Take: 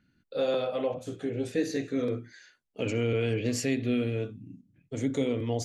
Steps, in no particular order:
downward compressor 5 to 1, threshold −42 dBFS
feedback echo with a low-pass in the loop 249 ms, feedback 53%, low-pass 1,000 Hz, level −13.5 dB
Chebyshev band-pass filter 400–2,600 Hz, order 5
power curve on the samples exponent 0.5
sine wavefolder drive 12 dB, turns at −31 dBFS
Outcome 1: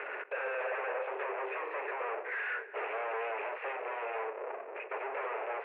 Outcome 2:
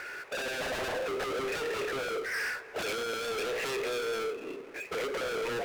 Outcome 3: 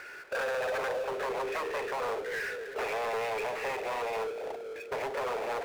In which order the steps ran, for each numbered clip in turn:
power curve on the samples, then downward compressor, then feedback echo with a low-pass in the loop, then sine wavefolder, then Chebyshev band-pass filter
downward compressor, then Chebyshev band-pass filter, then power curve on the samples, then sine wavefolder, then feedback echo with a low-pass in the loop
downward compressor, then feedback echo with a low-pass in the loop, then sine wavefolder, then Chebyshev band-pass filter, then power curve on the samples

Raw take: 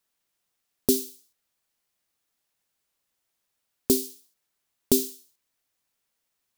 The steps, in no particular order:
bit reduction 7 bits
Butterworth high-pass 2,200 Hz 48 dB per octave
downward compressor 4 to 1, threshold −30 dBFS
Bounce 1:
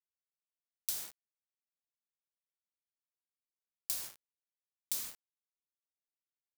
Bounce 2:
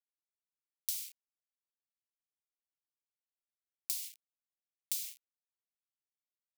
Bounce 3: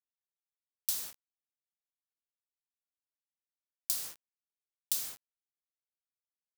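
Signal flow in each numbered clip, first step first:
downward compressor, then Butterworth high-pass, then bit reduction
downward compressor, then bit reduction, then Butterworth high-pass
Butterworth high-pass, then downward compressor, then bit reduction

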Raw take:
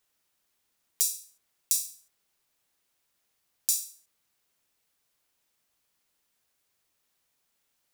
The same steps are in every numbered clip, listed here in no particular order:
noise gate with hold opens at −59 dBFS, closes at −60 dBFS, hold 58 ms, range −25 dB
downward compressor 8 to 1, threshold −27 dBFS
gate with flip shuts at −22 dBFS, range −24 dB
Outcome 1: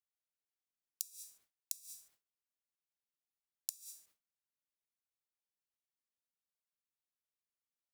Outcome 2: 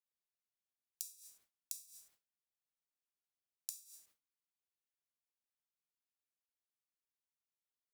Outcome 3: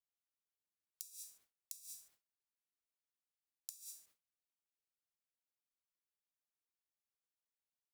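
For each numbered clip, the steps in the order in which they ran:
noise gate with hold, then downward compressor, then gate with flip
gate with flip, then noise gate with hold, then downward compressor
downward compressor, then gate with flip, then noise gate with hold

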